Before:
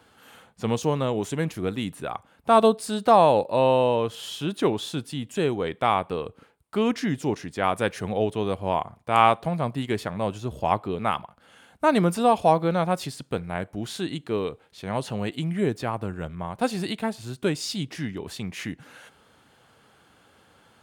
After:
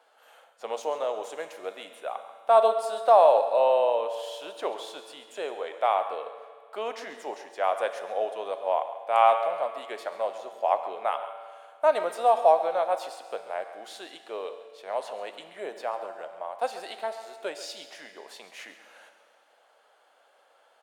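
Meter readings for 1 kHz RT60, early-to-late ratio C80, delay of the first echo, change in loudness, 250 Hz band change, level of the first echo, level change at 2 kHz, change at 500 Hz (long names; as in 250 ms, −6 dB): 2.0 s, 9.5 dB, 136 ms, −1.5 dB, −22.5 dB, −14.0 dB, −6.0 dB, −1.0 dB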